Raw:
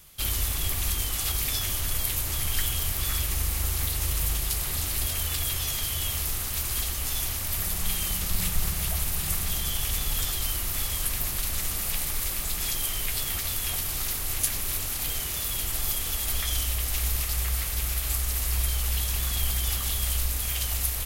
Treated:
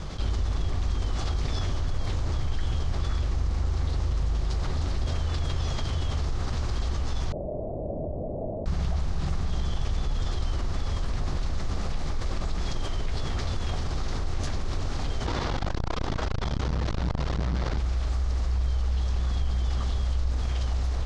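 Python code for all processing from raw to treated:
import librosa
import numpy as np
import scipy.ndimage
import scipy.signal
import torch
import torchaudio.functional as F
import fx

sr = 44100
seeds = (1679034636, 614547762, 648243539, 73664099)

y = fx.chain(x, sr, fx.delta_mod(bps=64000, step_db=-36.5),
    fx.cheby_ripple_highpass(hz=2300.0, ripple_db=9),
    fx.freq_invert(carrier_hz=3000), at=(7.32, 8.66))
y = fx.chain(y, sr, fx.resample_bad(factor=3, down='none', up='hold'),
    fx.transformer_sat(knee_hz=300.0), at=(15.26, 17.78))
y = scipy.signal.sosfilt(scipy.signal.bessel(6, 3300.0, 'lowpass', norm='mag', fs=sr, output='sos'), y)
y = fx.peak_eq(y, sr, hz=2600.0, db=-14.5, octaves=1.7)
y = fx.env_flatten(y, sr, amount_pct=70)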